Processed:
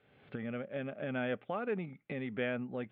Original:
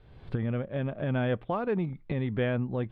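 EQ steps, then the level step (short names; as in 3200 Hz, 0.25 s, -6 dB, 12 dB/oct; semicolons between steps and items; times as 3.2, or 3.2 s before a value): speaker cabinet 330–2900 Hz, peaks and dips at 340 Hz -10 dB, 490 Hz -5 dB, 690 Hz -7 dB, 1100 Hz -8 dB, 1700 Hz -4 dB; notch 940 Hz, Q 5.3; +1.5 dB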